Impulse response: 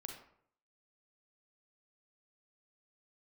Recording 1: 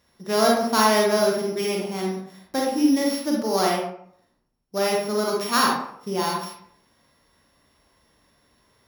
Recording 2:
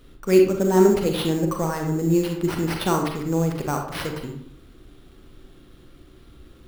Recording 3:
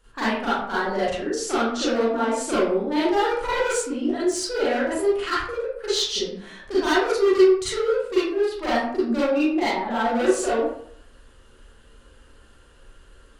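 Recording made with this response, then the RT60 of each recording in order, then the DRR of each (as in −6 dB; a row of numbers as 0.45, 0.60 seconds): 2; 0.65, 0.65, 0.65 seconds; −2.0, 2.5, −10.5 decibels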